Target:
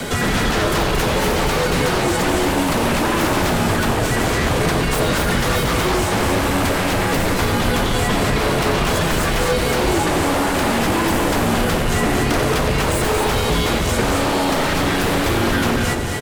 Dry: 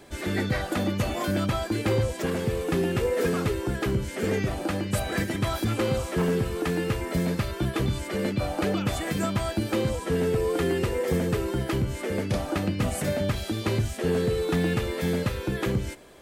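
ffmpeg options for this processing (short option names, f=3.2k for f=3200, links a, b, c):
-filter_complex "[0:a]asplit=3[a][b][c];[a]afade=t=out:st=3.61:d=0.02[d];[b]asubboost=boost=10.5:cutoff=98,afade=t=in:st=3.61:d=0.02,afade=t=out:st=4.63:d=0.02[e];[c]afade=t=in:st=4.63:d=0.02[f];[d][e][f]amix=inputs=3:normalize=0,acrossover=split=340[g][h];[h]acontrast=48[i];[g][i]amix=inputs=2:normalize=0,afreqshift=-160,asplit=2[j][k];[k]aeval=exprs='0.473*sin(PI/2*8.91*val(0)/0.473)':c=same,volume=-3.5dB[l];[j][l]amix=inputs=2:normalize=0,acrossover=split=510|1600[m][n][o];[m]acompressor=threshold=-21dB:ratio=4[p];[n]acompressor=threshold=-25dB:ratio=4[q];[o]acompressor=threshold=-28dB:ratio=4[r];[p][q][r]amix=inputs=3:normalize=0,aecho=1:1:90.38|227.4|265.3:0.316|0.562|0.316"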